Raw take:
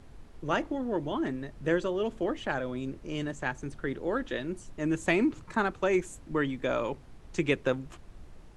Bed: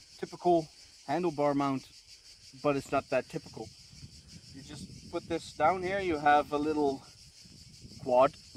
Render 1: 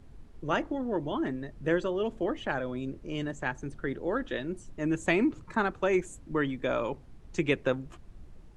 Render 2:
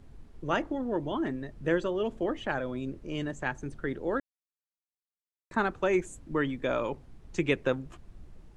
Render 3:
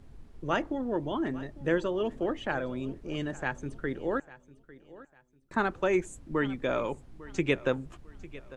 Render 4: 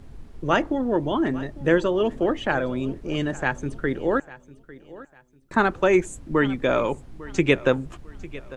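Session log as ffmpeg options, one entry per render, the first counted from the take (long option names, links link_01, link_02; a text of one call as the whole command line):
ffmpeg -i in.wav -af "afftdn=noise_reduction=6:noise_floor=-51" out.wav
ffmpeg -i in.wav -filter_complex "[0:a]asplit=3[link_01][link_02][link_03];[link_01]atrim=end=4.2,asetpts=PTS-STARTPTS,afade=type=out:start_time=4.196:duration=0.004:curve=hsin[link_04];[link_02]atrim=start=4.2:end=5.51,asetpts=PTS-STARTPTS,volume=0[link_05];[link_03]atrim=start=5.51,asetpts=PTS-STARTPTS,afade=type=in:duration=0.004:curve=hsin[link_06];[link_04][link_05][link_06]concat=n=3:v=0:a=1" out.wav
ffmpeg -i in.wav -af "aecho=1:1:850|1700|2550:0.112|0.0337|0.0101" out.wav
ffmpeg -i in.wav -af "volume=8dB" out.wav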